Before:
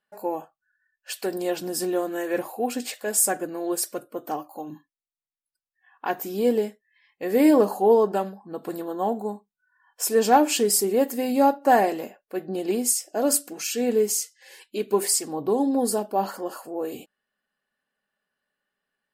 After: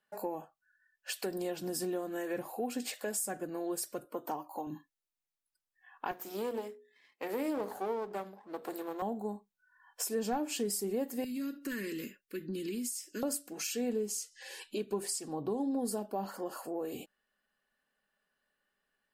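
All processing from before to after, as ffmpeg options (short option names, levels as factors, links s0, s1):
-filter_complex "[0:a]asettb=1/sr,asplit=3[s0][s1][s2];[s0]atrim=end=4.044[s3];[s1]atrim=start=4.04:end=4.67,asetpts=PTS-STARTPTS,afade=t=in:d=0.004:c=qsin,afade=t=out:st=0.626:d=0.004:c=qsin,highpass=160,equalizer=f=940:w=7.4:g=13[s4];[s2]atrim=start=4.666[s5];[s3][s4]acrossfade=d=0.004:c1=hsin:c2=qsin[s6];[s6][s5]acrossfade=d=0.004:c1=qsin:c2=hsin,asettb=1/sr,asplit=3[s7][s8][s9];[s7]atrim=end=6.114[s10];[s8]atrim=start=6.11:end=9.02,asetpts=PTS-STARTPTS,afade=t=in:d=0.004:c=qsin,afade=t=out:st=2.906:d=0.004:c=qsin,aeval=exprs='if(lt(val(0),0),0.251*val(0),val(0))':c=same,highpass=290,bandreject=f=60:t=h:w=6,bandreject=f=120:t=h:w=6,bandreject=f=180:t=h:w=6,bandreject=f=240:t=h:w=6,bandreject=f=300:t=h:w=6,bandreject=f=360:t=h:w=6,bandreject=f=420:t=h:w=6,bandreject=f=480:t=h:w=6,bandreject=f=540:t=h:w=6[s11];[s9]atrim=start=9.016[s12];[s10][s11]acrossfade=d=0.004:c1=hsin:c2=qsin[s13];[s13][s12]acrossfade=d=0.004:c1=qsin:c2=hsin,asettb=1/sr,asplit=3[s14][s15][s16];[s14]atrim=end=11.244[s17];[s15]atrim=start=11.24:end=13.23,asetpts=PTS-STARTPTS,afade=t=in:d=0.004:c=qsin,afade=t=out:st=1.986:d=0.004:c=qsin,asuperstop=centerf=750:order=4:qfactor=0.52,acompressor=threshold=0.0251:ratio=3:attack=3.2:release=140:knee=1:detection=peak[s18];[s16]atrim=start=13.226[s19];[s17][s18]acrossfade=d=0.004:c1=hsin:c2=qsin[s20];[s20][s19]acrossfade=d=0.004:c1=qsin:c2=hsin,asettb=1/sr,asplit=3[s21][s22][s23];[s21]atrim=end=13.934[s24];[s22]atrim=start=13.93:end=15.82,asetpts=PTS-STARTPTS,afade=t=in:d=0.004:c=qsin,afade=t=out:st=1.886:d=0.004:c=qsin,lowpass=12000,acompressor=mode=upward:threshold=0.01:ratio=2.5:attack=3.2:release=140:knee=2.83:detection=peak,bandreject=f=2100:w=8.5[s25];[s23]atrim=start=15.816[s26];[s24][s25]acrossfade=d=0.004:c1=hsin:c2=qsin[s27];[s27][s26]acrossfade=d=0.004:c1=qsin:c2=hsin,asubboost=boost=2.5:cutoff=51,acrossover=split=170[s28][s29];[s29]acompressor=threshold=0.0158:ratio=4[s30];[s28][s30]amix=inputs=2:normalize=0"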